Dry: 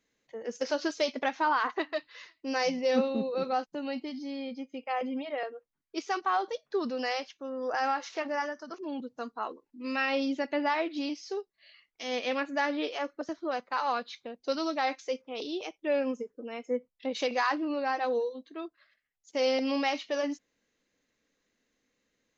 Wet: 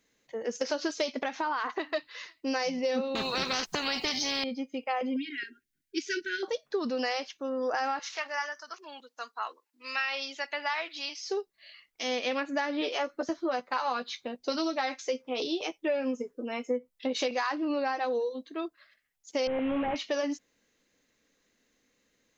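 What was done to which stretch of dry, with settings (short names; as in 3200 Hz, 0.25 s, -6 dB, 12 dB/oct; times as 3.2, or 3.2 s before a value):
1.22–1.93 compressor 2.5:1, threshold -32 dBFS
3.15–4.44 spectral compressor 4:1
5.16–6.43 brick-wall FIR band-stop 410–1400 Hz
7.99–11.25 HPF 1100 Hz
12.8–17.31 doubler 12 ms -6.5 dB
19.47–19.96 delta modulation 16 kbps, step -40 dBFS
whole clip: high shelf 5900 Hz +4.5 dB; compressor, threshold -31 dBFS; gain +4.5 dB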